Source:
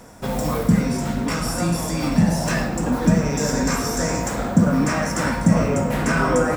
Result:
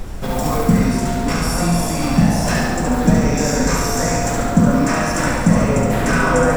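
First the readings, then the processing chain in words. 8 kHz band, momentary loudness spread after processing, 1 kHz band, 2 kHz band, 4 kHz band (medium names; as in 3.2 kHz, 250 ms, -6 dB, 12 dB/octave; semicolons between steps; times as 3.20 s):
+4.0 dB, 4 LU, +5.0 dB, +4.5 dB, +4.0 dB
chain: flutter echo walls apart 12 m, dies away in 1.1 s; added noise brown -29 dBFS; trim +2 dB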